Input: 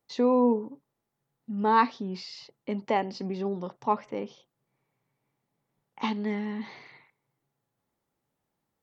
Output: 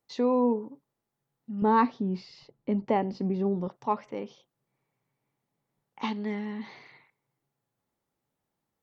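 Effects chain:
0:01.62–0:03.68: spectral tilt −3 dB per octave
level −2 dB

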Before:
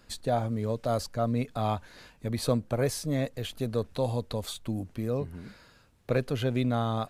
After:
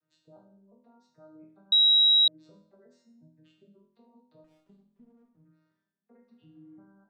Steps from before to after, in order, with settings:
vocoder with an arpeggio as carrier major triad, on D#3, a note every 356 ms
gate on every frequency bin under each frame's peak −30 dB strong
0:02.94–0:03.47: flat-topped bell 570 Hz −10.5 dB 1.1 octaves
0:06.32–0:06.76: healed spectral selection 330–2,500 Hz before
brickwall limiter −25 dBFS, peak gain reduction 10.5 dB
downward compressor, threshold −32 dBFS, peak gain reduction 5 dB
resonators tuned to a chord E2 major, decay 0.65 s
0:01.72–0:02.28: beep over 3,850 Hz −13.5 dBFS
0:04.44–0:05.45: windowed peak hold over 17 samples
level −3 dB

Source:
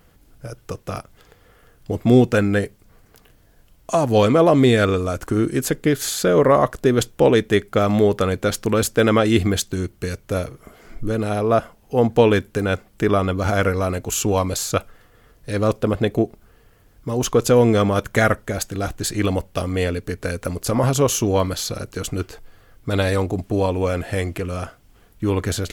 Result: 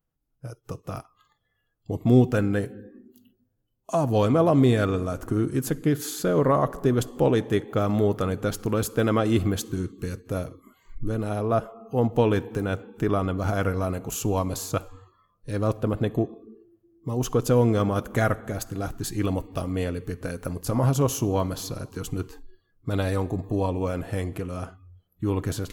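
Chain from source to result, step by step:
convolution reverb RT60 2.5 s, pre-delay 6 ms, DRR 12 dB
noise reduction from a noise print of the clip's start 23 dB
octave-band graphic EQ 500/2,000/4,000/8,000 Hz −4/−7/−5/−5 dB
level −3.5 dB

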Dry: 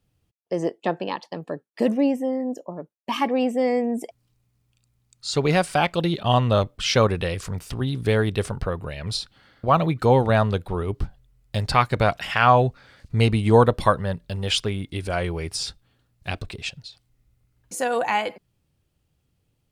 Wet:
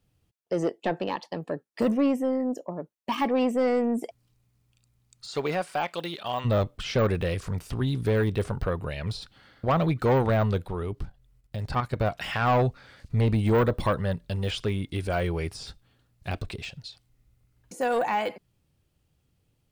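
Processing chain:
de-essing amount 100%
0:05.27–0:06.44: high-pass filter 530 Hz → 1,500 Hz 6 dB per octave
0:10.66–0:12.19: output level in coarse steps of 10 dB
soft clipping −16.5 dBFS, distortion −11 dB

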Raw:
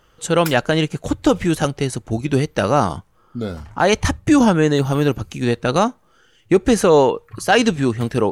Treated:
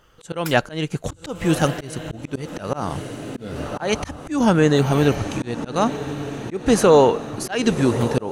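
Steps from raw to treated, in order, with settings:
feedback delay with all-pass diffusion 1,164 ms, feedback 51%, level −11.5 dB
volume swells 247 ms

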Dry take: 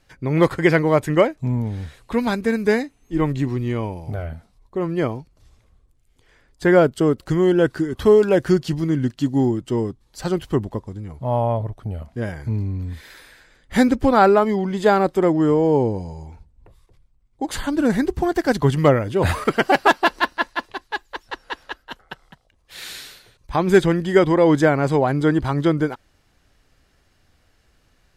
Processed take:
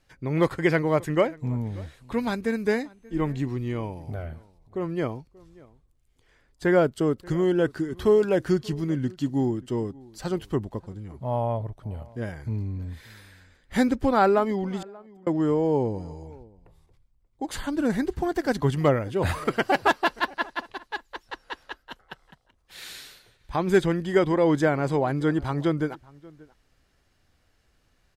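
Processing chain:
0:14.79–0:15.27: gate with flip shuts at −22 dBFS, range −37 dB
slap from a distant wall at 100 metres, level −23 dB
level −6 dB

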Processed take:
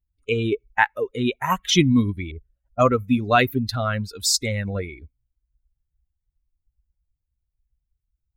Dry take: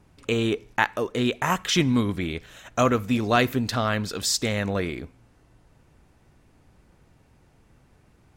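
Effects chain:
spectral dynamics exaggerated over time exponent 2
0:02.31–0:02.87: low-pass that shuts in the quiet parts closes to 310 Hz, open at −20.5 dBFS
level +6.5 dB

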